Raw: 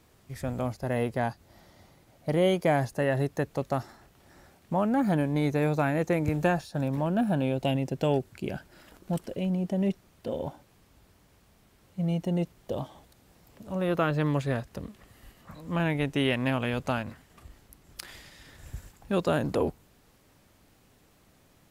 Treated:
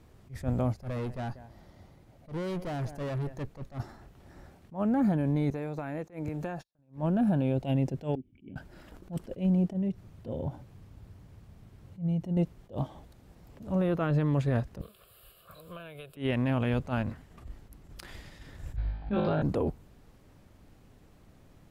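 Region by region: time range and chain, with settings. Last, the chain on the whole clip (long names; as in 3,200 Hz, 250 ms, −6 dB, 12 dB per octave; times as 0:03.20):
0:00.73–0:03.80: single-tap delay 190 ms −22 dB + tube saturation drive 35 dB, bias 0.5
0:05.50–0:06.79: noise gate −39 dBFS, range −44 dB + low-shelf EQ 160 Hz −11 dB + downward compressor 4 to 1, threshold −35 dBFS
0:08.15–0:08.56: downward compressor 1.5 to 1, threshold −42 dBFS + formant resonators in series i
0:09.73–0:12.37: parametric band 110 Hz +9.5 dB 1.2 octaves + mains-hum notches 60/120 Hz + downward compressor 3 to 1, threshold −35 dBFS
0:14.81–0:16.17: RIAA equalisation recording + downward compressor, threshold −37 dBFS + phaser with its sweep stopped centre 1,300 Hz, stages 8
0:18.76–0:19.42: elliptic low-pass filter 4,300 Hz, stop band 50 dB + double-tracking delay 18 ms −7 dB + flutter between parallel walls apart 3.3 metres, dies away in 0.59 s
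whole clip: spectral tilt −2 dB per octave; brickwall limiter −20 dBFS; level that may rise only so fast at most 230 dB per second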